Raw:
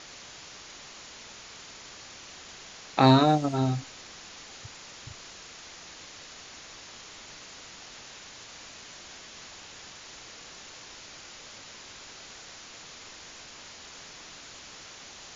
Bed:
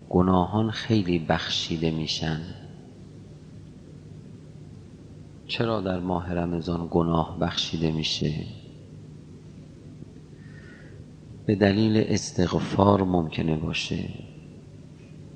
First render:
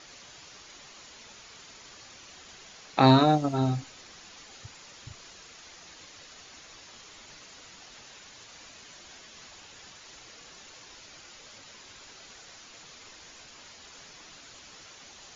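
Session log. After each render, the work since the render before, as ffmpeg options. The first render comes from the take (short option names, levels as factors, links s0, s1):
-af "afftdn=nr=6:nf=-47"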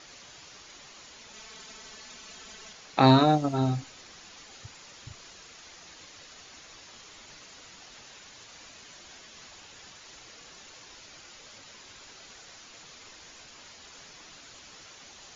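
-filter_complex "[0:a]asettb=1/sr,asplit=3[s0][s1][s2];[s0]atrim=end=1.334[s3];[s1]atrim=start=1.33:end=2.73,asetpts=PTS-STARTPTS,afade=t=in:d=0.004:c=qsin,afade=t=out:st=1.396:d=0.004:c=qsin,aecho=1:1:4.6:0.91,atrim=end_sample=61740[s4];[s2]atrim=start=2.726[s5];[s3][s4]acrossfade=d=0.004:c1=hsin:c2=qsin[s6];[s6][s5]acrossfade=d=0.004:c1=qsin:c2=hsin"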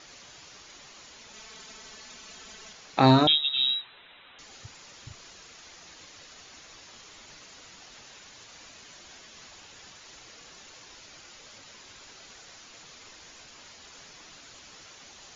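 -filter_complex "[0:a]asettb=1/sr,asplit=3[s0][s1][s2];[s0]atrim=end=3.274[s3];[s1]atrim=start=3.27:end=4.39,asetpts=PTS-STARTPTS,afade=t=in:d=0.004:c=qsin,afade=t=out:st=1.116:d=0.004:c=qsin,lowpass=f=3400:t=q:w=0.5098,lowpass=f=3400:t=q:w=0.6013,lowpass=f=3400:t=q:w=0.9,lowpass=f=3400:t=q:w=2.563,afreqshift=-4000[s4];[s2]atrim=start=4.386[s5];[s3][s4]acrossfade=d=0.004:c1=hsin:c2=qsin[s6];[s6][s5]acrossfade=d=0.004:c1=qsin:c2=hsin"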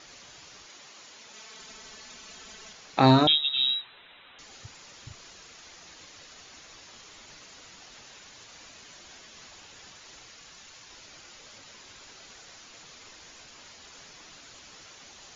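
-filter_complex "[0:a]asettb=1/sr,asplit=3[s0][s1][s2];[s0]atrim=end=0.664[s3];[s1]atrim=start=0.66:end=1.6,asetpts=PTS-STARTPTS,afade=t=in:d=0.004:c=qsin,afade=t=out:st=0.936:d=0.004:c=qsin,highpass=f=220:p=1[s4];[s2]atrim=start=1.596[s5];[s3][s4]acrossfade=d=0.004:c1=hsin:c2=qsin[s6];[s6][s5]acrossfade=d=0.004:c1=qsin:c2=hsin,asettb=1/sr,asplit=3[s7][s8][s9];[s7]atrim=end=10.264[s10];[s8]atrim=start=10.26:end=10.91,asetpts=PTS-STARTPTS,afade=t=in:d=0.004:c=qsin,afade=t=out:st=0.646:d=0.004:c=qsin,equalizer=f=410:t=o:w=1.7:g=-5.5[s11];[s9]atrim=start=10.906[s12];[s10][s11]acrossfade=d=0.004:c1=hsin:c2=qsin[s13];[s13][s12]acrossfade=d=0.004:c1=qsin:c2=hsin"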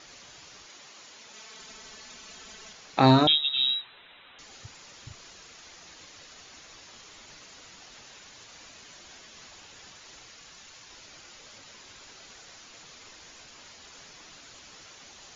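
-af anull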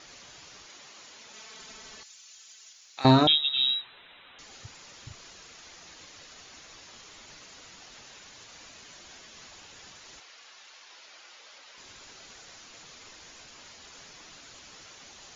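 -filter_complex "[0:a]asettb=1/sr,asplit=3[s0][s1][s2];[s0]atrim=end=2.034[s3];[s1]atrim=start=2.03:end=3.05,asetpts=PTS-STARTPTS,afade=t=in:d=0.004:c=qsin,afade=t=out:st=1.016:d=0.004:c=qsin,aderivative[s4];[s2]atrim=start=3.046[s5];[s3][s4]acrossfade=d=0.004:c1=hsin:c2=qsin[s6];[s6][s5]acrossfade=d=0.004:c1=qsin:c2=hsin,asettb=1/sr,asplit=3[s7][s8][s9];[s7]atrim=end=10.204[s10];[s8]atrim=start=10.2:end=11.78,asetpts=PTS-STARTPTS,afade=t=in:d=0.004:c=qsin,afade=t=out:st=1.576:d=0.004:c=qsin,highpass=550,lowpass=5400[s11];[s9]atrim=start=11.776[s12];[s10][s11]acrossfade=d=0.004:c1=hsin:c2=qsin[s13];[s13][s12]acrossfade=d=0.004:c1=qsin:c2=hsin"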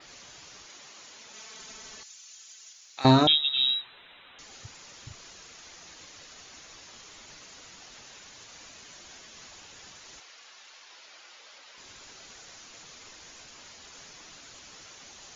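-af "adynamicequalizer=threshold=0.002:dfrequency=6300:dqfactor=3:tfrequency=6300:tqfactor=3:attack=5:release=100:ratio=0.375:range=3:mode=boostabove:tftype=bell"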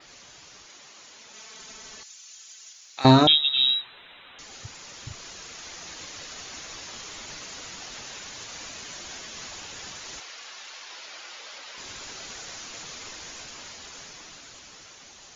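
-af "dynaudnorm=f=300:g=13:m=2.82"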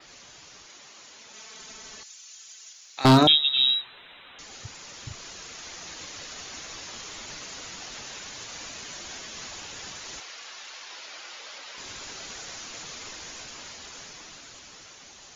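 -filter_complex "[0:a]acrossover=split=380[s0][s1];[s0]crystalizer=i=9.5:c=0[s2];[s2][s1]amix=inputs=2:normalize=0,aeval=exprs='0.422*(abs(mod(val(0)/0.422+3,4)-2)-1)':c=same"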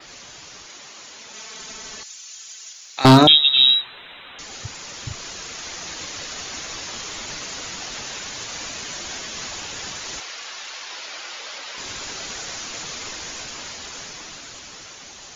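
-af "volume=2.37,alimiter=limit=0.794:level=0:latency=1"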